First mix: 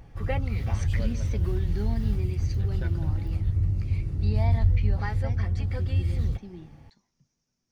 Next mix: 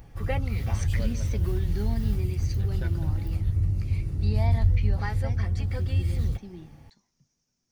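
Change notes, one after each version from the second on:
master: add treble shelf 8.1 kHz +11.5 dB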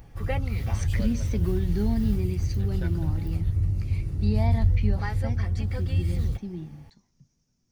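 speech: add bass shelf 290 Hz +11.5 dB

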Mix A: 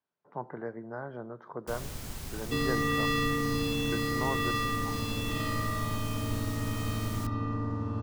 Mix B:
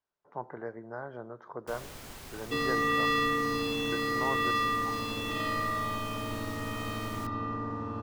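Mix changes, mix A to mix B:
speech: remove band-pass 160–4000 Hz; second sound: send on; master: add tone controls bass -10 dB, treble -5 dB

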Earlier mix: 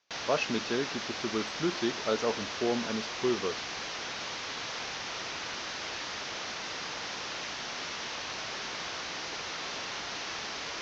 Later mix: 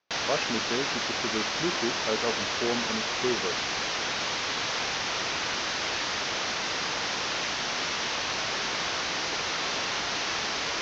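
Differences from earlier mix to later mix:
speech: add low-pass 1.9 kHz 6 dB/octave; background +7.5 dB

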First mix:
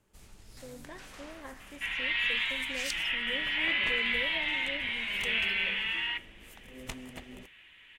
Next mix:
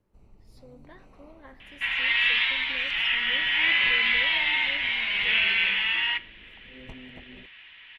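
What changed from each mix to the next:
speech -3.5 dB; first sound: add boxcar filter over 26 samples; second sound +7.0 dB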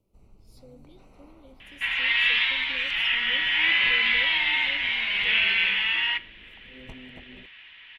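speech: add brick-wall FIR band-stop 580–2200 Hz; master: add treble shelf 6.9 kHz +7 dB

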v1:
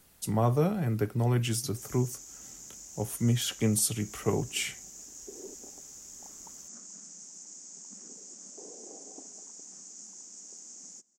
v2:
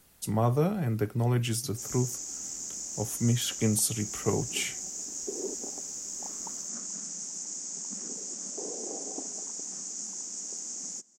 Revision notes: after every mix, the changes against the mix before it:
background +9.5 dB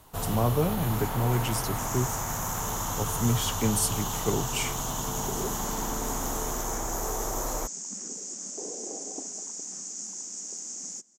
first sound: unmuted

